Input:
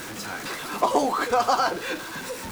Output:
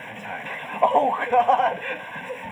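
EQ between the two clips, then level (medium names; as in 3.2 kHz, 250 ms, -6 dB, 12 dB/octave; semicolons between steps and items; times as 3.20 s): Savitzky-Golay filter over 25 samples; high-pass 160 Hz 12 dB/octave; static phaser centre 1.3 kHz, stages 6; +5.5 dB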